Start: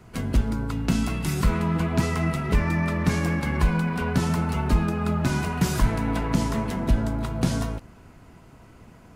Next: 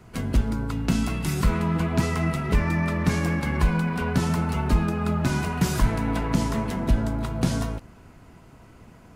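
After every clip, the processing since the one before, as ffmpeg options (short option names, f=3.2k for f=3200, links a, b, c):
-af anull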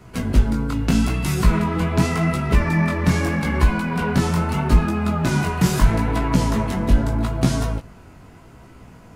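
-af "flanger=delay=15:depth=7.3:speed=0.8,volume=7.5dB"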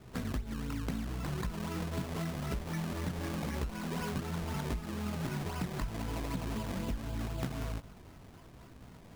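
-af "acompressor=threshold=-24dB:ratio=12,acrusher=samples=22:mix=1:aa=0.000001:lfo=1:lforange=22:lforate=3.9,volume=-8.5dB"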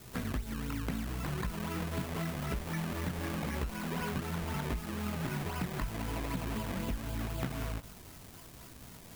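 -filter_complex "[0:a]crystalizer=i=4.5:c=0,acrossover=split=2800[a][b];[b]acompressor=threshold=-44dB:ratio=4:attack=1:release=60[c];[a][c]amix=inputs=2:normalize=0"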